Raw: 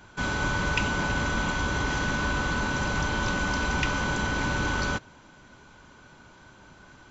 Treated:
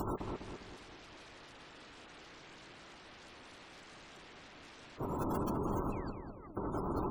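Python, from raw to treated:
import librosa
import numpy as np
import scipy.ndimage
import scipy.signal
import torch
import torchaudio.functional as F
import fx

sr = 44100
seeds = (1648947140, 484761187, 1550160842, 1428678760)

p1 = fx.brickwall_bandstop(x, sr, low_hz=1400.0, high_hz=6200.0)
p2 = fx.high_shelf(p1, sr, hz=6700.0, db=-9.5)
p3 = fx.spec_paint(p2, sr, seeds[0], shape='fall', start_s=5.92, length_s=0.64, low_hz=270.0, high_hz=2700.0, level_db=-40.0)
p4 = fx.quant_dither(p3, sr, seeds[1], bits=8, dither='triangular')
p5 = p3 + F.gain(torch.from_numpy(p4), -8.5).numpy()
p6 = fx.small_body(p5, sr, hz=(400.0, 1500.0), ring_ms=35, db=7)
p7 = 10.0 ** (-35.0 / 20.0) * (np.abs((p6 / 10.0 ** (-35.0 / 20.0) + 3.0) % 4.0 - 2.0) - 1.0)
p8 = fx.over_compress(p7, sr, threshold_db=-51.0, ratio=-0.5)
p9 = fx.peak_eq(p8, sr, hz=310.0, db=4.0, octaves=0.6)
p10 = fx.spec_gate(p9, sr, threshold_db=-20, keep='strong')
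p11 = fx.echo_filtered(p10, sr, ms=202, feedback_pct=51, hz=1200.0, wet_db=-3)
y = F.gain(torch.from_numpy(p11), 7.5).numpy()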